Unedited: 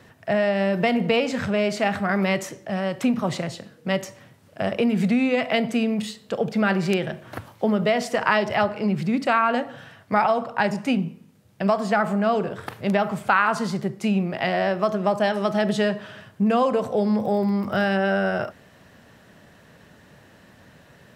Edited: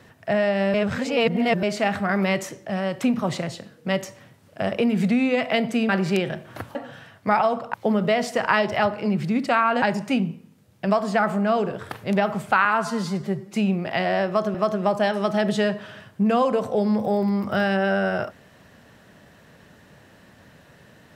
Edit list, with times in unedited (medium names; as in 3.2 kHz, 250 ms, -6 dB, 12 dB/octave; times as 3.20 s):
0.74–1.63 s: reverse
5.89–6.66 s: delete
9.60–10.59 s: move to 7.52 s
13.42–14.01 s: stretch 1.5×
14.75–15.02 s: loop, 2 plays